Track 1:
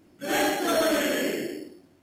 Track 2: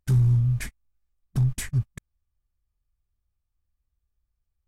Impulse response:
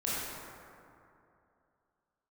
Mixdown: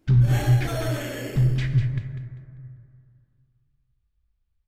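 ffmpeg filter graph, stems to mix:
-filter_complex "[0:a]volume=0.376,asplit=2[s0][s1];[s1]volume=0.141[s2];[1:a]lowpass=f=4100:w=0.5412,lowpass=f=4100:w=1.3066,equalizer=f=720:t=o:w=2.3:g=-5,volume=1.26,asplit=3[s3][s4][s5];[s4]volume=0.251[s6];[s5]volume=0.422[s7];[2:a]atrim=start_sample=2205[s8];[s2][s6]amix=inputs=2:normalize=0[s9];[s9][s8]afir=irnorm=-1:irlink=0[s10];[s7]aecho=0:1:197|394|591|788:1|0.27|0.0729|0.0197[s11];[s0][s3][s10][s11]amix=inputs=4:normalize=0"

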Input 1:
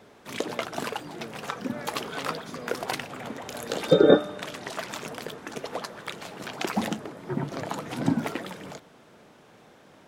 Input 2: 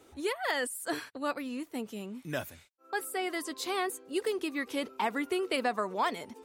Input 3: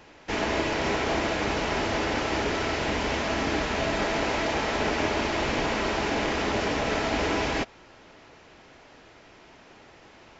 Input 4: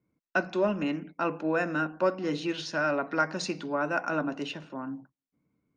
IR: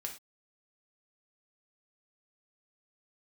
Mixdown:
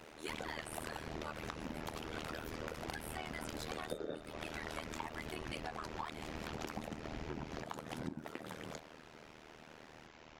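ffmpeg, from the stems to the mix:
-filter_complex "[0:a]volume=0.794[s0];[1:a]lowshelf=f=660:t=q:w=1.5:g=-8,aecho=1:1:5.4:0.74,volume=0.794[s1];[2:a]acrossover=split=250[s2][s3];[s3]acompressor=threshold=0.00708:ratio=2[s4];[s2][s4]amix=inputs=2:normalize=0,volume=0.75[s5];[3:a]adelay=600,volume=0.168[s6];[s0][s1][s5][s6]amix=inputs=4:normalize=0,tremolo=f=78:d=0.974,acompressor=threshold=0.0112:ratio=10"

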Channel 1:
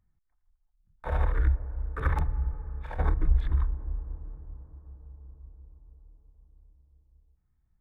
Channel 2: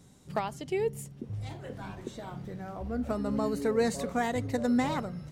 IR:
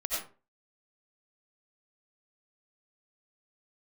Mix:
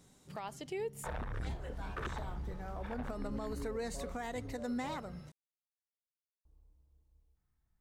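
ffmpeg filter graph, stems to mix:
-filter_complex "[0:a]asoftclip=type=tanh:threshold=0.0335,volume=0.944,asplit=3[s0][s1][s2];[s0]atrim=end=5.21,asetpts=PTS-STARTPTS,afade=t=out:st=5.206:d=0.004:c=hsin[s3];[s1]atrim=start=5.21:end=6.45,asetpts=PTS-STARTPTS,volume=0[s4];[s2]atrim=start=6.45,asetpts=PTS-STARTPTS,afade=t=in:d=0.004:c=hsin[s5];[s3][s4][s5]concat=n=3:v=0:a=1[s6];[1:a]volume=0.708[s7];[s6][s7]amix=inputs=2:normalize=0,lowshelf=f=250:g=-7.5,alimiter=level_in=2.11:limit=0.0631:level=0:latency=1:release=156,volume=0.473"

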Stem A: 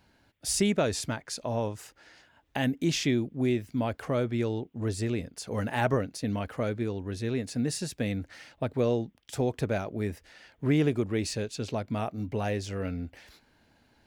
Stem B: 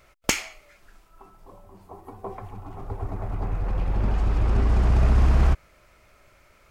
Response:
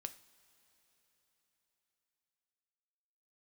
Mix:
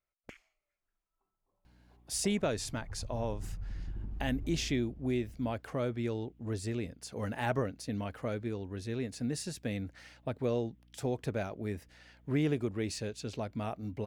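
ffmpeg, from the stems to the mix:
-filter_complex "[0:a]aeval=exprs='val(0)+0.00158*(sin(2*PI*60*n/s)+sin(2*PI*2*60*n/s)/2+sin(2*PI*3*60*n/s)/3+sin(2*PI*4*60*n/s)/4+sin(2*PI*5*60*n/s)/5)':c=same,adelay=1650,volume=0.531[s0];[1:a]afwtdn=0.0562,acompressor=threshold=0.0501:ratio=10,volume=0.335,afade=t=in:st=1.48:d=0.57:silence=0.354813,afade=t=out:st=4.33:d=0.61:silence=0.223872[s1];[s0][s1]amix=inputs=2:normalize=0"

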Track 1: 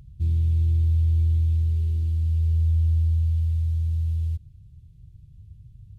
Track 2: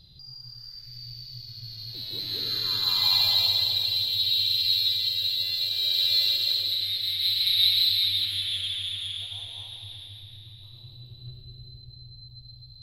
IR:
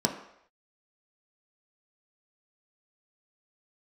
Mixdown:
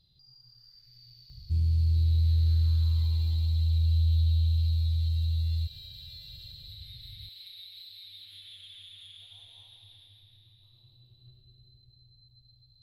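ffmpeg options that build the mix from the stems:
-filter_complex "[0:a]equalizer=f=580:t=o:w=2.5:g=-9.5,adelay=1300,volume=0.75[s0];[1:a]acompressor=threshold=0.0251:ratio=6,volume=0.211[s1];[s0][s1]amix=inputs=2:normalize=0"

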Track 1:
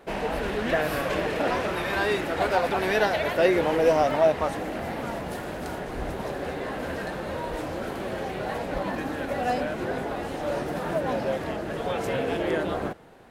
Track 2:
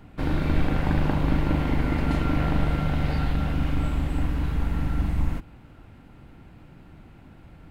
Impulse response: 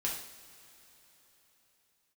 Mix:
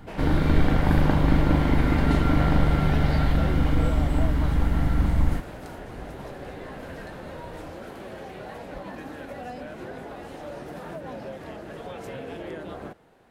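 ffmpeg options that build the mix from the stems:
-filter_complex "[0:a]acrossover=split=280[s0][s1];[s1]acompressor=threshold=0.0398:ratio=6[s2];[s0][s2]amix=inputs=2:normalize=0,volume=0.447[s3];[1:a]bandreject=f=2600:w=6.9,volume=1.41[s4];[s3][s4]amix=inputs=2:normalize=0"

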